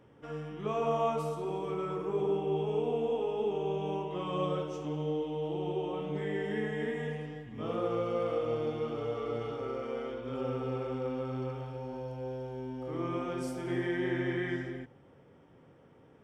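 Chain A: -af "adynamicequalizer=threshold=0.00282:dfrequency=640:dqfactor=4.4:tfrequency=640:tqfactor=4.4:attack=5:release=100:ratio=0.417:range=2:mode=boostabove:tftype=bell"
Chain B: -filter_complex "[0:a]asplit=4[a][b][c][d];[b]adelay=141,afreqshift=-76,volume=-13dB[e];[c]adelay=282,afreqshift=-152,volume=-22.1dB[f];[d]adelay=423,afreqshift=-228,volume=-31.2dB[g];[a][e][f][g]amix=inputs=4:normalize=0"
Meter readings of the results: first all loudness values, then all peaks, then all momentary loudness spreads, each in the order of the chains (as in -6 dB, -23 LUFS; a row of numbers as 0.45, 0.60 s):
-34.0, -34.5 LUFS; -18.0, -19.0 dBFS; 8, 8 LU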